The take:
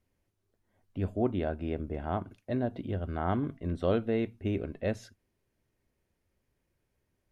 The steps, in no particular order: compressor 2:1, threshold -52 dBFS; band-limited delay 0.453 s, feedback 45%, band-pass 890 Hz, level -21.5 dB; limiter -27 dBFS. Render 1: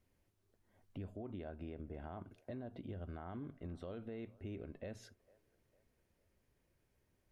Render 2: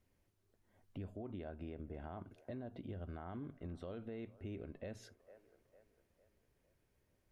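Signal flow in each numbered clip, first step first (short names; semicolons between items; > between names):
limiter > compressor > band-limited delay; limiter > band-limited delay > compressor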